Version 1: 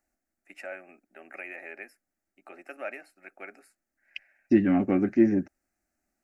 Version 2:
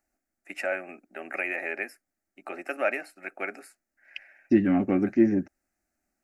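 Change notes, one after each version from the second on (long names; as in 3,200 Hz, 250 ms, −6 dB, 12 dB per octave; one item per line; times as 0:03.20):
first voice +10.0 dB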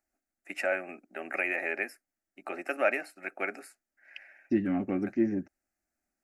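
second voice −6.5 dB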